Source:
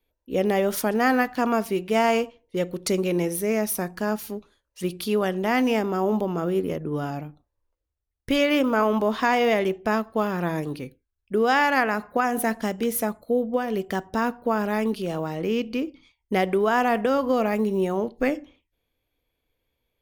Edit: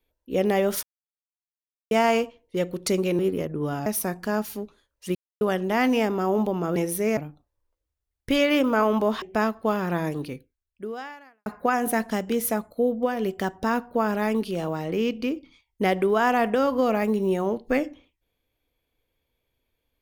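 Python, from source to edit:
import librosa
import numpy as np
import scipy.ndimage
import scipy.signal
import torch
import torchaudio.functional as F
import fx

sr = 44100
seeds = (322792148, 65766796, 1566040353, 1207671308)

y = fx.edit(x, sr, fx.silence(start_s=0.83, length_s=1.08),
    fx.swap(start_s=3.19, length_s=0.41, other_s=6.5, other_length_s=0.67),
    fx.silence(start_s=4.89, length_s=0.26),
    fx.cut(start_s=9.22, length_s=0.51),
    fx.fade_out_span(start_s=10.85, length_s=1.12, curve='qua'), tone=tone)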